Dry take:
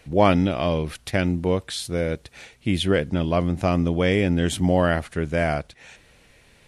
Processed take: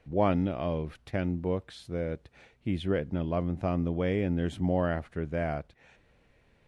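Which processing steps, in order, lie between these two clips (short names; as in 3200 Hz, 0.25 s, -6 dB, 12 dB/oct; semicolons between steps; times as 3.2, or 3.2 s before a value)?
LPF 1300 Hz 6 dB/oct; gain -7.5 dB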